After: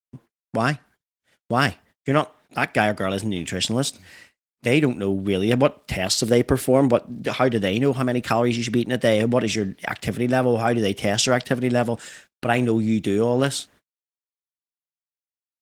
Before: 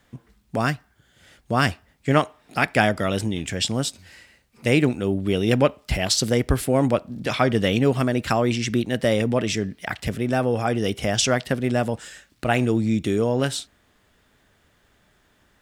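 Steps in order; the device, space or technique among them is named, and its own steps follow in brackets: 6.11–7.48 s: dynamic bell 410 Hz, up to +4 dB, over -30 dBFS, Q 1.3; video call (high-pass 110 Hz 12 dB/octave; level rider gain up to 4.5 dB; gate -47 dBFS, range -55 dB; trim -1 dB; Opus 20 kbps 48 kHz)

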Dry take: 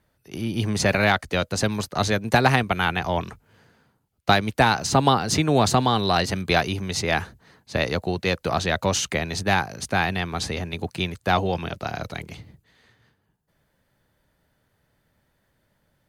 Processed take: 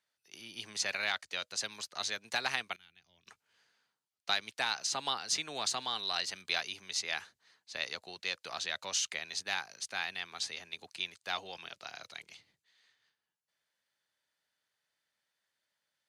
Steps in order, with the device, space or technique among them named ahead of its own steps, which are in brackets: piezo pickup straight into a mixer (low-pass 5.2 kHz 12 dB/octave; differentiator); 2.76–3.27 s: amplifier tone stack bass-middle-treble 10-0-1

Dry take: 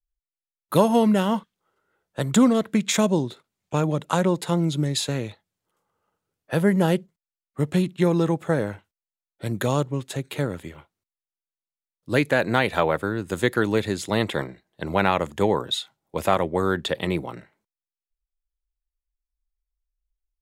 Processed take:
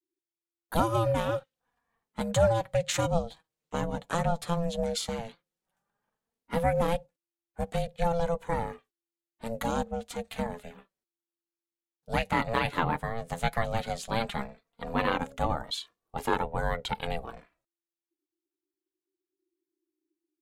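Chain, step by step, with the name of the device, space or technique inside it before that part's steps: alien voice (ring modulator 340 Hz; flange 0.12 Hz, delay 1.9 ms, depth 5.3 ms, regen +42%)

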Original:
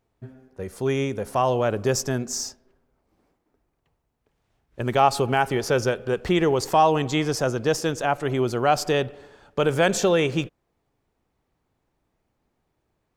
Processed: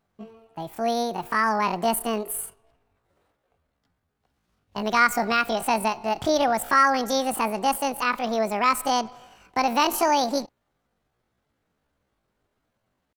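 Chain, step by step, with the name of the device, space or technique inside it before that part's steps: chipmunk voice (pitch shift +9.5 st); trim -1 dB

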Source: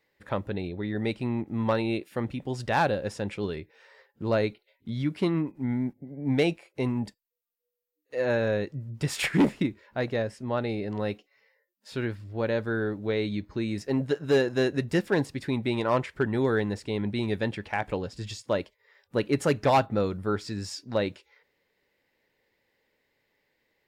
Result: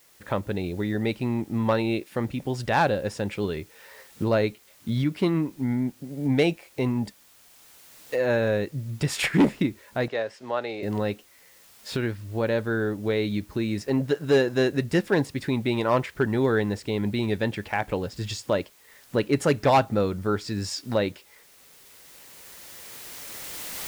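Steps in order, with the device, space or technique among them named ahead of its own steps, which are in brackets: cheap recorder with automatic gain (white noise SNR 32 dB; recorder AGC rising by 8.7 dB/s); 10.08–10.83 s: three-band isolator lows -18 dB, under 380 Hz, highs -15 dB, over 6.5 kHz; trim +2.5 dB

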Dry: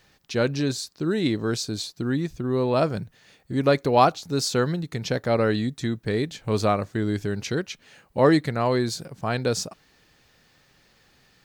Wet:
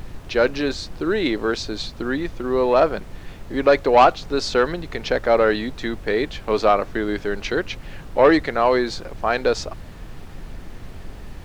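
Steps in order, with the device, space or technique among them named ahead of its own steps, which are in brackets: aircraft cabin announcement (band-pass 410–3200 Hz; saturation -13.5 dBFS, distortion -15 dB; brown noise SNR 12 dB); trim +8.5 dB

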